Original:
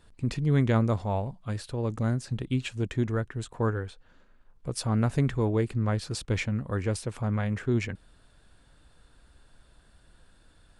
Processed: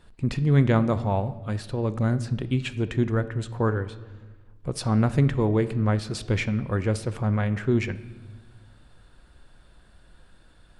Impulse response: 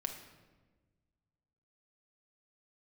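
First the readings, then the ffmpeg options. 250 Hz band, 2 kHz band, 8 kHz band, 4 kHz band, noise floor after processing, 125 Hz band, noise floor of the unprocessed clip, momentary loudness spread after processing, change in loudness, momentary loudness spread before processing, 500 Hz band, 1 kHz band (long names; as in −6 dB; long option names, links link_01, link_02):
+4.0 dB, +3.5 dB, −0.5 dB, +2.0 dB, −54 dBFS, +3.5 dB, −60 dBFS, 11 LU, +4.0 dB, 10 LU, +4.0 dB, +4.0 dB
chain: -filter_complex "[0:a]asplit=2[link_01][link_02];[1:a]atrim=start_sample=2205,lowpass=5100[link_03];[link_02][link_03]afir=irnorm=-1:irlink=0,volume=-4dB[link_04];[link_01][link_04]amix=inputs=2:normalize=0"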